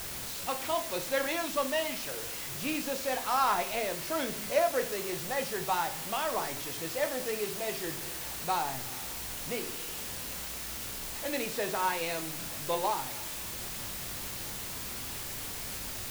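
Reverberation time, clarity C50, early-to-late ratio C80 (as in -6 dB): 0.40 s, 14.5 dB, 19.5 dB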